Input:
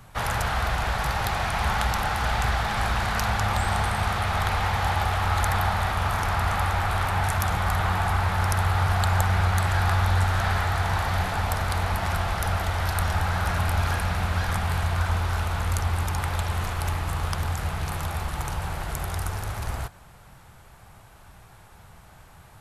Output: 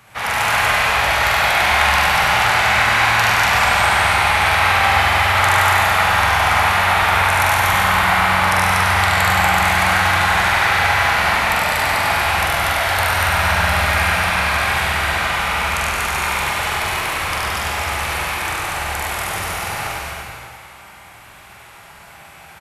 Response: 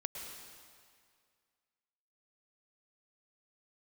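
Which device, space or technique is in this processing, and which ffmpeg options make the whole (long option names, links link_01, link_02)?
PA in a hall: -filter_complex "[0:a]highpass=frequency=170:poles=1,lowshelf=frequency=430:gain=-5,equalizer=frequency=2300:width_type=o:width=0.73:gain=7,aecho=1:1:98:0.631[link_01];[1:a]atrim=start_sample=2205[link_02];[link_01][link_02]afir=irnorm=-1:irlink=0,asplit=2[link_03][link_04];[link_04]adelay=44,volume=-4dB[link_05];[link_03][link_05]amix=inputs=2:normalize=0,aecho=1:1:72.89|239.1:0.794|0.794,volume=5dB"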